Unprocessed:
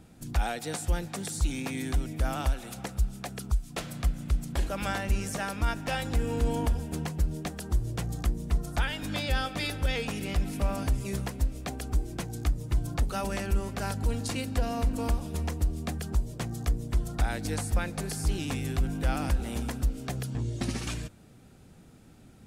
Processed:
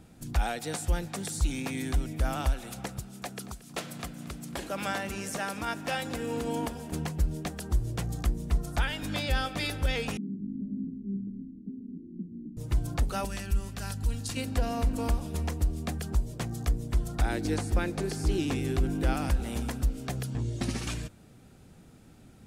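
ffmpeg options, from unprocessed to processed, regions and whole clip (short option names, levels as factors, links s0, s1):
-filter_complex "[0:a]asettb=1/sr,asplit=3[s0][s1][s2];[s0]atrim=end=2.994[s3];[s1]atrim=start=2.99:end=6.92,asetpts=PTS-STARTPTS,afade=t=in:d=0.004:c=qsin,afade=t=out:st=3.926:d=0.004:c=qsin,highpass=170,aecho=1:1:228|456|684:0.141|0.048|0.0163,atrim=end_sample=173313[s4];[s2]atrim=start=6.916[s5];[s3][s4]acrossfade=d=0.004:c1=hsin:c2=qsin[s6];[s6][s5]acrossfade=d=0.004:c1=qsin:c2=hsin,asettb=1/sr,asplit=3[s7][s8][s9];[s7]atrim=end=10.174[s10];[s8]atrim=start=10.17:end=12.57,asetpts=PTS-STARTPTS,afade=t=in:d=0.004:c=qsin,afade=t=out:st=2.396:d=0.004:c=qsin,asuperpass=centerf=240:order=8:qfactor=1.5,aecho=1:1:4.7:0.61,atrim=end_sample=105840,asplit=6[s11][s12][s13][s14][s15][s16];[s12]adelay=106,afreqshift=-84,volume=0.0841[s17];[s13]adelay=212,afreqshift=-168,volume=0.0507[s18];[s14]adelay=318,afreqshift=-252,volume=0.0302[s19];[s15]adelay=424,afreqshift=-336,volume=0.0182[s20];[s16]adelay=530,afreqshift=-420,volume=0.011[s21];[s11][s17][s18][s19][s20][s21]amix=inputs=6:normalize=0,atrim=end_sample=105840[s22];[s9]atrim=start=12.566[s23];[s10][s22]acrossfade=d=0.004:c1=hsin:c2=qsin[s24];[s24][s23]acrossfade=d=0.004:c1=qsin:c2=hsin,asettb=1/sr,asplit=3[s25][s26][s27];[s25]atrim=end=13.254[s28];[s26]atrim=start=13.25:end=14.37,asetpts=PTS-STARTPTS,afade=t=in:d=0.004:c=qsin,afade=t=out:st=1.116:d=0.004:c=qsin,equalizer=f=560:w=0.44:g=-10.5,bandreject=f=2200:w=14[s29];[s27]atrim=start=14.366[s30];[s28][s29]acrossfade=d=0.004:c1=hsin:c2=qsin[s31];[s31][s30]acrossfade=d=0.004:c1=qsin:c2=hsin,asettb=1/sr,asplit=3[s32][s33][s34];[s32]atrim=end=17.244[s35];[s33]atrim=start=17.24:end=19.13,asetpts=PTS-STARTPTS,afade=t=in:d=0.004:c=qsin,afade=t=out:st=1.886:d=0.004:c=qsin,equalizer=f=350:w=2.6:g=10,acrossover=split=6900[s36][s37];[s37]acompressor=threshold=0.00447:ratio=4:attack=1:release=60[s38];[s36][s38]amix=inputs=2:normalize=0[s39];[s34]atrim=start=19.126[s40];[s35][s39]acrossfade=d=0.004:c1=hsin:c2=qsin[s41];[s41][s40]acrossfade=d=0.004:c1=qsin:c2=hsin"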